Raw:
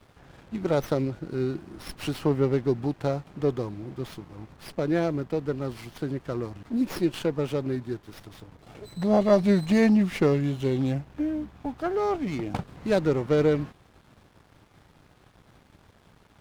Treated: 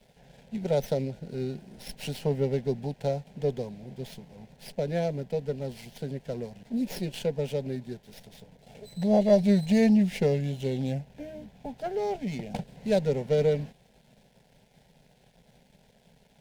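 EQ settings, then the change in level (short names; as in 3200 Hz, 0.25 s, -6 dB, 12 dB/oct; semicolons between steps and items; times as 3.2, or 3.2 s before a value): fixed phaser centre 320 Hz, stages 6; 0.0 dB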